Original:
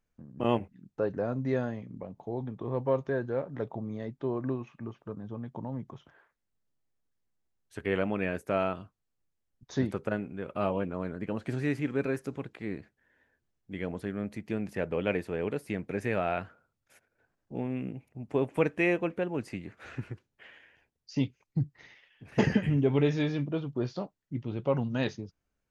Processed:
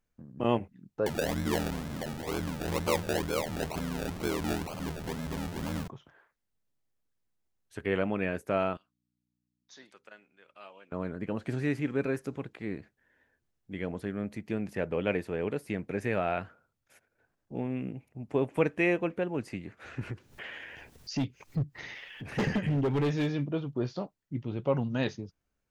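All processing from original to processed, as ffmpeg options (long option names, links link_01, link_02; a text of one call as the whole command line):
ffmpeg -i in.wav -filter_complex "[0:a]asettb=1/sr,asplit=3[link_01][link_02][link_03];[link_01]atrim=end=1.064[link_04];[link_02]atrim=start=1.06:end=5.88,asetpts=PTS-STARTPTS,afade=type=in:duration=0.004:curve=qsin,afade=type=out:start_time=4.816:duration=0.004:curve=qsin,aeval=exprs='val(0)+0.5*0.0299*sgn(val(0))':channel_layout=same,aeval=exprs='val(0)*sin(2*PI*40*n/s)':channel_layout=same,acrusher=samples=33:mix=1:aa=0.000001:lfo=1:lforange=19.8:lforate=2.1[link_05];[link_03]atrim=start=5.876[link_06];[link_04][link_05]acrossfade=duration=0.004:curve1=hsin:curve2=qsin[link_07];[link_07][link_06]acrossfade=duration=0.004:curve1=qsin:curve2=hsin,asettb=1/sr,asplit=3[link_08][link_09][link_10];[link_08]atrim=end=8.774[link_11];[link_09]atrim=start=8.77:end=10.92,asetpts=PTS-STARTPTS,afade=type=in:duration=0.004:curve=qsin,afade=type=out:start_time=2.146:duration=0.004:curve=qsin,aderivative,aeval=exprs='val(0)+0.0002*(sin(2*PI*60*n/s)+sin(2*PI*2*60*n/s)/2+sin(2*PI*3*60*n/s)/3+sin(2*PI*4*60*n/s)/4+sin(2*PI*5*60*n/s)/5)':channel_layout=same,highpass=170,lowpass=5000[link_12];[link_10]atrim=start=10.916[link_13];[link_11][link_12]acrossfade=duration=0.004:curve1=hsin:curve2=qsin[link_14];[link_14][link_13]acrossfade=duration=0.004:curve1=qsin:curve2=hsin,asettb=1/sr,asplit=3[link_15][link_16][link_17];[link_15]atrim=end=20.014[link_18];[link_16]atrim=start=20.01:end=23.33,asetpts=PTS-STARTPTS,afade=type=in:duration=0.004:curve=qsin,afade=type=out:start_time=3.316:duration=0.004:curve=qsin,acompressor=mode=upward:threshold=-30dB:ratio=2.5:attack=3.2:release=140:knee=2.83:detection=peak,volume=24dB,asoftclip=hard,volume=-24dB[link_19];[link_17]atrim=start=23.326[link_20];[link_18][link_19]acrossfade=duration=0.004:curve1=hsin:curve2=qsin[link_21];[link_21][link_20]acrossfade=duration=0.004:curve1=qsin:curve2=hsin" out.wav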